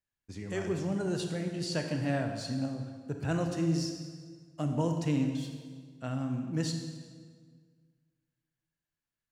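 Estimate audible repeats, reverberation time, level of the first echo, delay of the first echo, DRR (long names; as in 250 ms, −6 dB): no echo audible, 1.7 s, no echo audible, no echo audible, 4.0 dB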